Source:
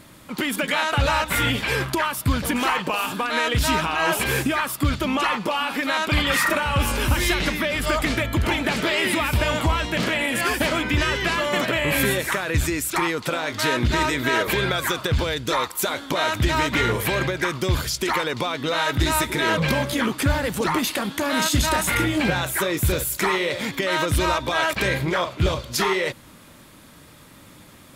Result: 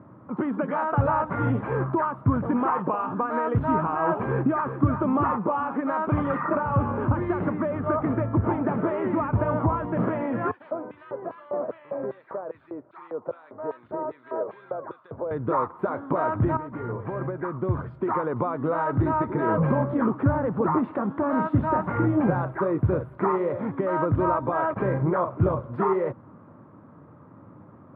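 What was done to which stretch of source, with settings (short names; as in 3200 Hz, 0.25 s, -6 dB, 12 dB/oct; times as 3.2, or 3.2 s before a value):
4.28–5 echo throw 0.37 s, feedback 15%, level -9 dB
6.38–10 air absorption 110 m
10.51–15.31 LFO band-pass square 2.5 Hz 580–4100 Hz
16.57–18.36 fade in, from -13 dB
whole clip: elliptic band-pass 100–1200 Hz, stop band 60 dB; low shelf 190 Hz +3.5 dB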